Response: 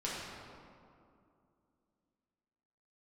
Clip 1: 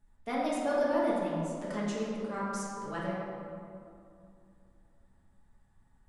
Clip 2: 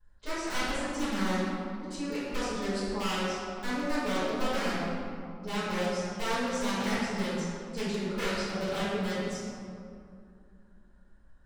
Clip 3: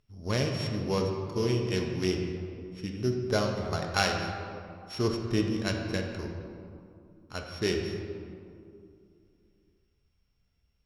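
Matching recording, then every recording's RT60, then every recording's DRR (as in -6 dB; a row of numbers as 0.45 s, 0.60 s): 1; 2.5 s, 2.5 s, 2.5 s; -7.5 dB, -17.5 dB, 1.5 dB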